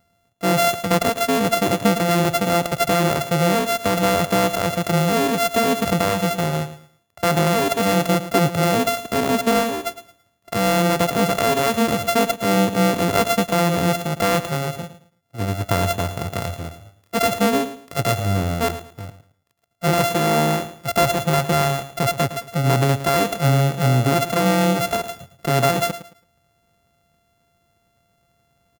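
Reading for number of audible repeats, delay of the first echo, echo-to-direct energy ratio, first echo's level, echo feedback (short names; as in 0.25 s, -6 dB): 2, 0.11 s, -12.5 dB, -13.0 dB, 26%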